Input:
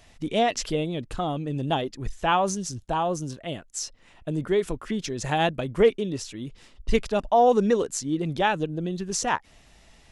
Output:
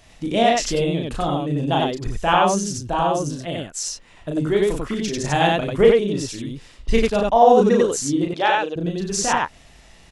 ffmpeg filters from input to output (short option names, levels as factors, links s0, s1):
-filter_complex "[0:a]asettb=1/sr,asplit=3[s0][s1][s2];[s0]atrim=end=8.244[s3];[s1]atrim=start=8.24:end=8.76,asetpts=PTS-STARTPTS,afade=t=in:d=0.004:c=qsin,afade=t=out:st=0.516:d=0.004:c=qsin,highpass=440,lowpass=6800[s4];[s2]atrim=start=8.756[s5];[s3][s4]acrossfade=d=0.004:c1=hsin:c2=qsin[s6];[s6][s5]acrossfade=d=0.004:c1=qsin:c2=hsin,aecho=1:1:34.99|93.29:0.708|0.891,volume=1.33"